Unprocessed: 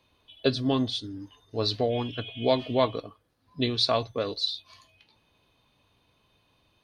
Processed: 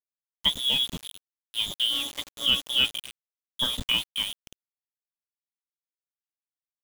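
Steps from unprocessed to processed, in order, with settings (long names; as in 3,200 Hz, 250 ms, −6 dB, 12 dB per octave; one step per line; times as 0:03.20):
slap from a distant wall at 45 metres, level −17 dB
voice inversion scrambler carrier 3,600 Hz
centre clipping without the shift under −30.5 dBFS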